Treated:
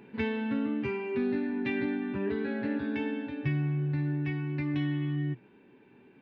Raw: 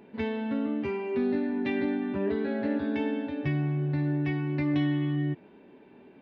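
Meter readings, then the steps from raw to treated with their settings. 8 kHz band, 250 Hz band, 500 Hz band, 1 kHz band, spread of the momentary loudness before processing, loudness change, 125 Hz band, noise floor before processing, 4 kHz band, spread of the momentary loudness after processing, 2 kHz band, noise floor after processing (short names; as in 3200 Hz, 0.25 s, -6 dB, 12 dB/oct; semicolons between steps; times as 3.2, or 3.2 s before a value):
n/a, -2.5 dB, -3.0 dB, -3.5 dB, 4 LU, -2.5 dB, -1.5 dB, -54 dBFS, -2.0 dB, 3 LU, +0.5 dB, -58 dBFS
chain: thirty-one-band EQ 125 Hz +9 dB, 630 Hz -9 dB, 1600 Hz +4 dB, 2500 Hz +5 dB; vocal rider 2 s; gain -3.5 dB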